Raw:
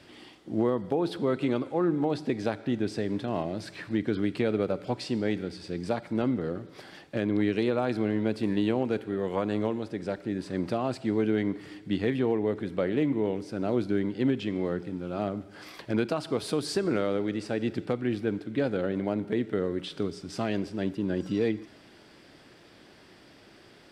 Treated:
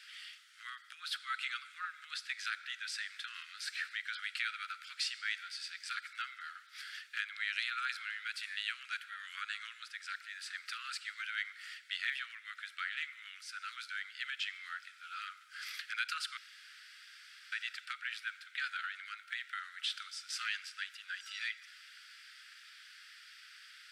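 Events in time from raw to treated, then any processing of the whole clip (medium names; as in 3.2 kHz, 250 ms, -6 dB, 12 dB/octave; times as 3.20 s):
16.37–17.52 s: room tone
whole clip: steep high-pass 1.3 kHz 96 dB/octave; trim +3.5 dB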